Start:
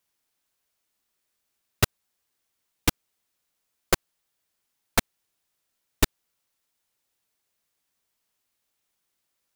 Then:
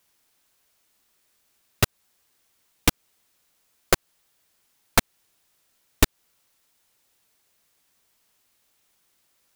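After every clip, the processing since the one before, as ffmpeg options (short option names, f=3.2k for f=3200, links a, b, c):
-af "acompressor=threshold=-22dB:ratio=3,alimiter=level_in=11dB:limit=-1dB:release=50:level=0:latency=1,volume=-1dB"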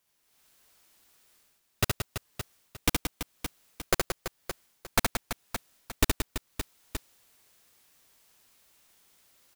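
-af "aecho=1:1:70|175|332.5|568.8|923.1:0.631|0.398|0.251|0.158|0.1,dynaudnorm=f=230:g=3:m=10.5dB,volume=-8dB"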